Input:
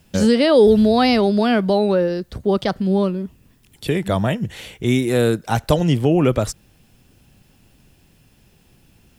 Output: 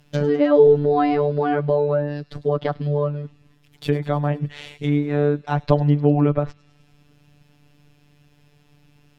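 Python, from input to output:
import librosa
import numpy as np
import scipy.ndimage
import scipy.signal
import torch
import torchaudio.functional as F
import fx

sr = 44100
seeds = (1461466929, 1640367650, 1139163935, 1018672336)

p1 = scipy.ndimage.median_filter(x, 5, mode='constant')
p2 = fx.robotise(p1, sr, hz=146.0)
p3 = fx.env_lowpass_down(p2, sr, base_hz=1400.0, full_db=-17.5)
p4 = p3 + fx.echo_wet_highpass(p3, sr, ms=102, feedback_pct=69, hz=4300.0, wet_db=-13.5, dry=0)
y = F.gain(torch.from_numpy(p4), 1.0).numpy()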